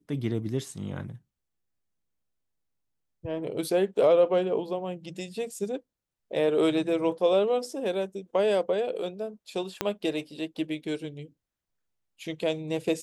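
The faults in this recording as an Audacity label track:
9.810000	9.810000	pop -10 dBFS

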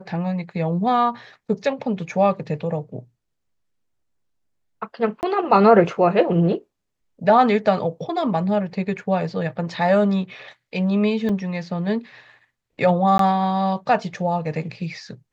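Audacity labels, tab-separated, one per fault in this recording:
5.210000	5.230000	dropout 19 ms
11.290000	11.290000	dropout 2.9 ms
13.180000	13.190000	dropout 13 ms

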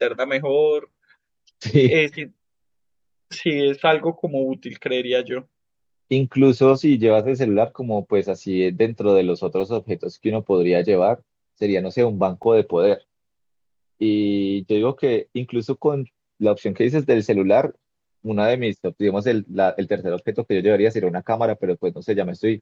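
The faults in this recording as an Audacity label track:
9.600000	9.610000	dropout 5.2 ms
12.430000	12.430000	dropout 3.2 ms

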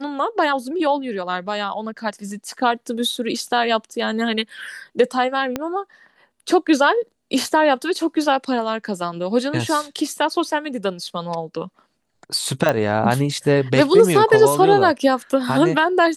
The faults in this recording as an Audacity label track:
5.560000	5.560000	pop -9 dBFS
12.690000	12.690000	pop -6 dBFS

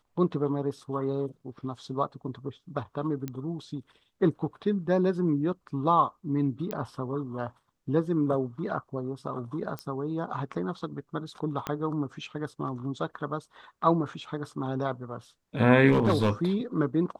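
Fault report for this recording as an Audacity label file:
3.280000	3.280000	pop -20 dBFS
6.710000	6.710000	pop -18 dBFS
9.790000	9.790000	pop -20 dBFS
11.670000	11.670000	pop -16 dBFS
15.910000	16.290000	clipped -17.5 dBFS

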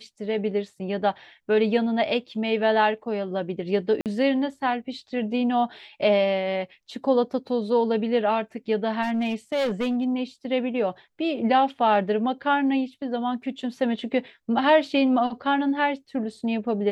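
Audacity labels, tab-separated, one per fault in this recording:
4.010000	4.060000	dropout 48 ms
9.020000	10.040000	clipped -21 dBFS

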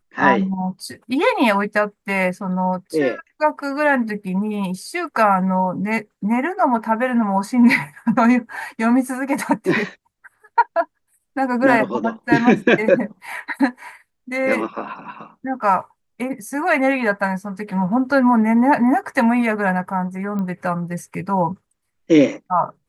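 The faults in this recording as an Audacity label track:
20.390000	20.390000	pop -17 dBFS

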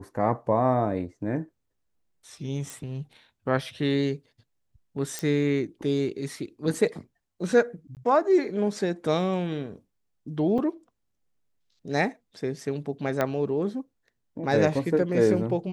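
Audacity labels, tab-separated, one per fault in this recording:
2.700000	2.700000	pop
5.190000	5.190000	pop -15 dBFS
7.950000	7.970000	dropout 18 ms
10.580000	10.590000	dropout 5.2 ms
13.210000	13.210000	pop -12 dBFS

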